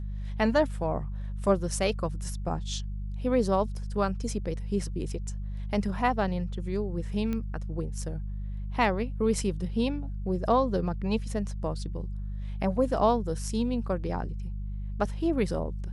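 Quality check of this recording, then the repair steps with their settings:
mains hum 50 Hz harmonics 4 −34 dBFS
0:07.33: click −20 dBFS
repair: click removal
hum removal 50 Hz, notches 4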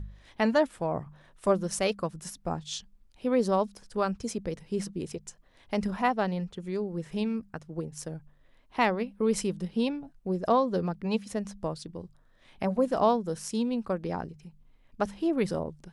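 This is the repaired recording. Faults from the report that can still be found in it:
none of them is left

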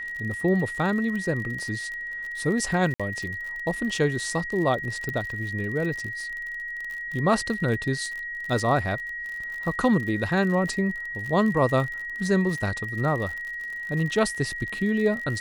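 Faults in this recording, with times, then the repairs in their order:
surface crackle 53 per second −32 dBFS
whistle 1,900 Hz −31 dBFS
0:02.94–0:03.00: drop-out 56 ms
0:05.09: click −17 dBFS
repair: click removal
notch filter 1,900 Hz, Q 30
repair the gap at 0:02.94, 56 ms

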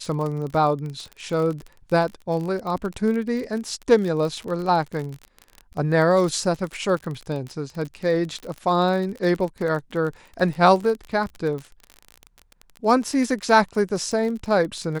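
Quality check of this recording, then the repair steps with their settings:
surface crackle 39 per second −28 dBFS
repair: click removal

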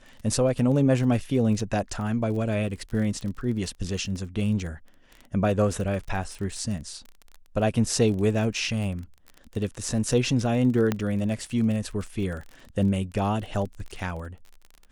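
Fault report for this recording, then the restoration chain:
surface crackle 28 per second −33 dBFS
0:10.92: click −11 dBFS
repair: click removal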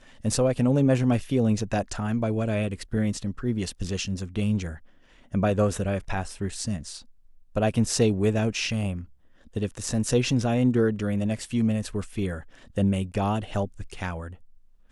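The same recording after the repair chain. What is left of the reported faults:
none of them is left

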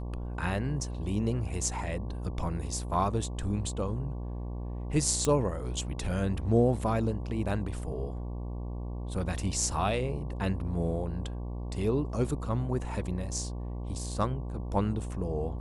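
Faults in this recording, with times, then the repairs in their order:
mains buzz 60 Hz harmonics 19 −36 dBFS
0:05.25: click −14 dBFS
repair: click removal
hum removal 60 Hz, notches 19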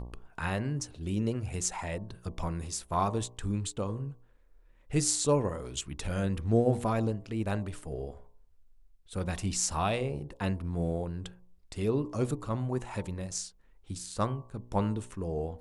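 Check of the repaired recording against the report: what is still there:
none of them is left

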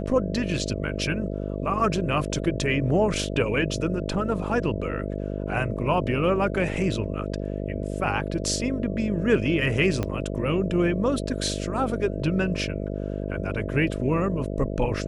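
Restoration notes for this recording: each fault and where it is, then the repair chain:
mains buzz 50 Hz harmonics 13 −30 dBFS
0:10.03: click −13 dBFS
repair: click removal
hum removal 50 Hz, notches 13

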